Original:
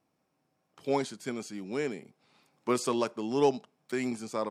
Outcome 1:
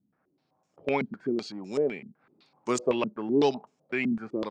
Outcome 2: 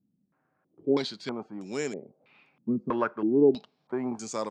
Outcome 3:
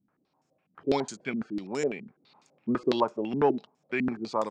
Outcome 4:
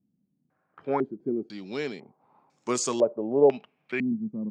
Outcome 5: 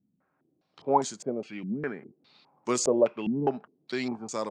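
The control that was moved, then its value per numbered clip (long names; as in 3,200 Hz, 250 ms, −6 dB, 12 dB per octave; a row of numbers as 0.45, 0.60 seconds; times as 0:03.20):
low-pass on a step sequencer, speed: 7.9, 3.1, 12, 2, 4.9 Hertz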